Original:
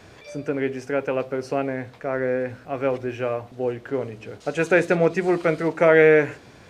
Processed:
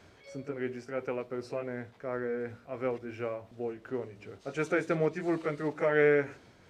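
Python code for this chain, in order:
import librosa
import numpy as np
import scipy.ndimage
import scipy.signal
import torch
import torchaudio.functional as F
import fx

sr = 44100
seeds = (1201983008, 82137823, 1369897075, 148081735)

y = fx.pitch_heads(x, sr, semitones=-1.0)
y = F.gain(torch.from_numpy(y), -9.0).numpy()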